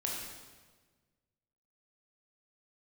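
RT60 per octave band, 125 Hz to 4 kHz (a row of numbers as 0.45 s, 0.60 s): 1.9 s, 1.7 s, 1.5 s, 1.3 s, 1.2 s, 1.2 s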